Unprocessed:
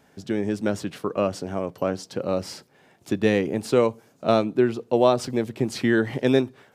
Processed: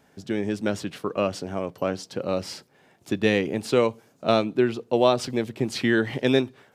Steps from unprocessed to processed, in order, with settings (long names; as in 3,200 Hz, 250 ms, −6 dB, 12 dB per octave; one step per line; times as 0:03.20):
dynamic equaliser 3,100 Hz, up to +6 dB, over −43 dBFS, Q 0.88
level −1.5 dB